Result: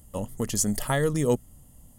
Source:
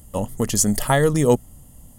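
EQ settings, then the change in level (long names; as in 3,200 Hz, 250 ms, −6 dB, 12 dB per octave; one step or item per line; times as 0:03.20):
dynamic equaliser 790 Hz, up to −4 dB, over −34 dBFS, Q 2.5
−6.5 dB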